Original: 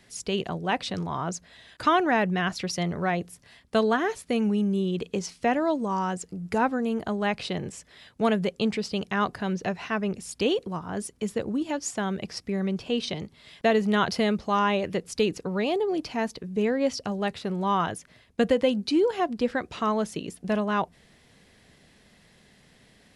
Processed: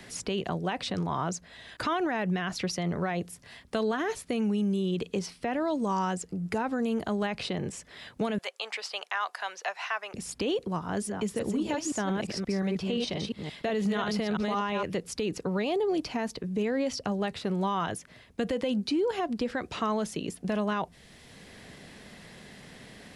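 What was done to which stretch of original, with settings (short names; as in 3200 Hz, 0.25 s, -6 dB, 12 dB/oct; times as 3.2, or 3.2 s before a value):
5.19–5.68 bell 6800 Hz -8 dB 0.41 oct
8.38–10.14 HPF 730 Hz 24 dB/oct
10.87–14.83 reverse delay 0.175 s, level -5 dB
whole clip: limiter -21 dBFS; three-band squash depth 40%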